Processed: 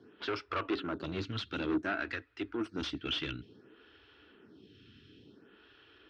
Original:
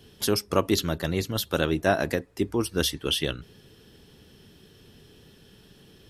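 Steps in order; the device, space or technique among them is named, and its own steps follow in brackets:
0:01.78–0:02.87: graphic EQ with 10 bands 500 Hz −8 dB, 1,000 Hz −7 dB, 8,000 Hz +7 dB
vibe pedal into a guitar amplifier (phaser with staggered stages 0.56 Hz; tube saturation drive 30 dB, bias 0.5; loudspeaker in its box 84–4,100 Hz, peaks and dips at 160 Hz −9 dB, 300 Hz +8 dB, 550 Hz −5 dB, 780 Hz −4 dB, 1,400 Hz +10 dB, 2,600 Hz +4 dB)

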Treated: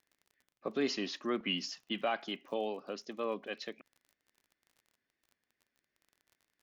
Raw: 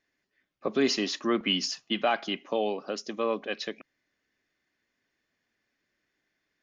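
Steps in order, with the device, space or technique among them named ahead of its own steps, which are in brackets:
lo-fi chain (low-pass filter 5,700 Hz 12 dB per octave; tape wow and flutter; surface crackle 29 per second −43 dBFS)
level −7.5 dB

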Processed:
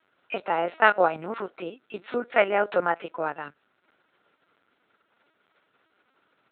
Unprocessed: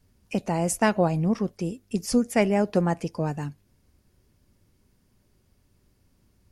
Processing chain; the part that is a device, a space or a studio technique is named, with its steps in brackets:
talking toy (linear-prediction vocoder at 8 kHz pitch kept; high-pass filter 580 Hz 12 dB per octave; parametric band 1,400 Hz +11.5 dB 0.32 octaves)
level +6 dB

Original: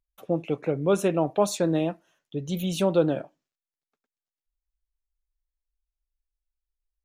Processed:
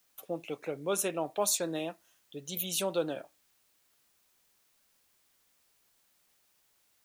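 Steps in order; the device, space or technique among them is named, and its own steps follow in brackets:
turntable without a phono preamp (RIAA equalisation recording; white noise bed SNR 33 dB)
level −6.5 dB

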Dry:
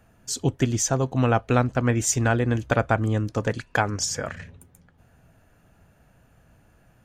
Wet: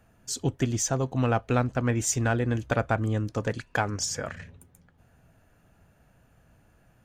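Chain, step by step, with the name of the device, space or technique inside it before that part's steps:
parallel distortion (in parallel at −12 dB: hard clipping −22 dBFS, distortion −7 dB)
on the sum: level −5 dB

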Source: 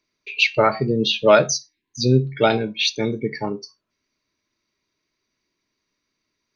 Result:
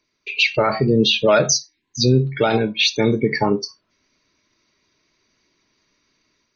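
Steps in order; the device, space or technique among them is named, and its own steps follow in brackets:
0:02.00–0:03.51: parametric band 1,100 Hz +4 dB 0.87 octaves
low-bitrate web radio (automatic gain control gain up to 6.5 dB; brickwall limiter −10.5 dBFS, peak gain reduction 9 dB; level +4.5 dB; MP3 32 kbit/s 48,000 Hz)

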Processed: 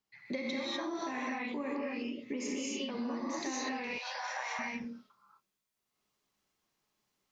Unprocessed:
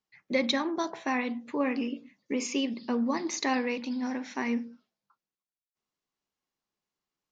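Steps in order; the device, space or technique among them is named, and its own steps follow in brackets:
0:03.72–0:04.59: Butterworth high-pass 580 Hz 48 dB per octave
reverb whose tail is shaped and stops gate 270 ms rising, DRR −7.5 dB
serial compression, leveller first (downward compressor 2 to 1, threshold −25 dBFS, peak gain reduction 6 dB; downward compressor 4 to 1, threshold −36 dBFS, peak gain reduction 13 dB)

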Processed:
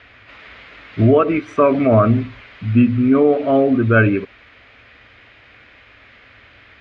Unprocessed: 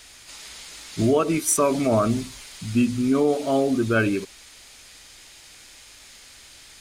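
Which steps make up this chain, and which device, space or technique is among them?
bass cabinet (loudspeaker in its box 63–2,400 Hz, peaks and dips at 110 Hz +5 dB, 160 Hz −10 dB, 350 Hz −5 dB, 870 Hz −8 dB)
level +8.5 dB

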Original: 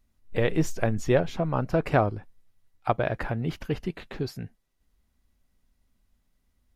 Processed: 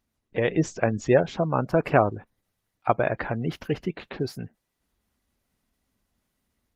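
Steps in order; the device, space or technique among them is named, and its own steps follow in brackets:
0:03.60–0:04.38: noise gate with hold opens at −49 dBFS
noise-suppressed video call (high-pass filter 160 Hz 6 dB per octave; gate on every frequency bin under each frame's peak −30 dB strong; automatic gain control gain up to 4 dB; Opus 20 kbit/s 48,000 Hz)

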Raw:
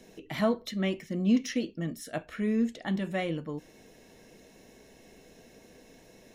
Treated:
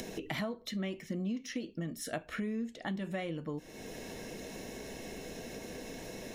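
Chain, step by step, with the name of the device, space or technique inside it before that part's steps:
upward and downward compression (upward compression, threshold −45 dBFS; downward compressor 8 to 1, threshold −42 dBFS, peak gain reduction 21.5 dB)
level +7.5 dB

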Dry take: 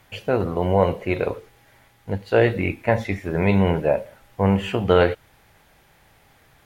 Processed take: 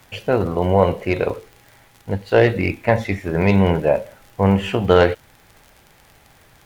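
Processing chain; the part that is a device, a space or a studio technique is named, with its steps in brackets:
record under a worn stylus (stylus tracing distortion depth 0.043 ms; surface crackle 54 per second −36 dBFS; pink noise bed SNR 39 dB)
level +3 dB

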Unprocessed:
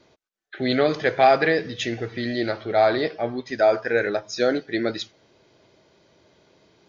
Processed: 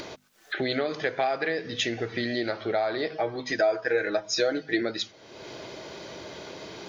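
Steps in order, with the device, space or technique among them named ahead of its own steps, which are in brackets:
mains-hum notches 50/100/150/200/250 Hz
upward and downward compression (upward compression, threshold −33 dBFS; downward compressor 6 to 1, threshold −30 dBFS, peak gain reduction 17.5 dB)
0:03.11–0:04.82: comb filter 6.3 ms, depth 64%
low-shelf EQ 220 Hz −6 dB
level +6 dB

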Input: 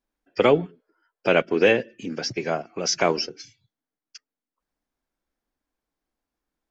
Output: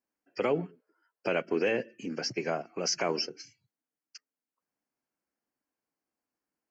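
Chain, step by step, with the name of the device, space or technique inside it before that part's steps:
PA system with an anti-feedback notch (high-pass filter 130 Hz 12 dB per octave; Butterworth band-reject 3,600 Hz, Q 3.4; brickwall limiter −14 dBFS, peak gain reduction 8 dB)
level −4.5 dB

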